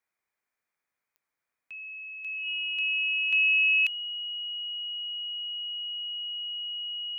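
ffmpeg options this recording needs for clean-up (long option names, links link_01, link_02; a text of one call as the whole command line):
ffmpeg -i in.wav -af "adeclick=threshold=4,bandreject=frequency=2900:width=30,agate=range=-21dB:threshold=-79dB" out.wav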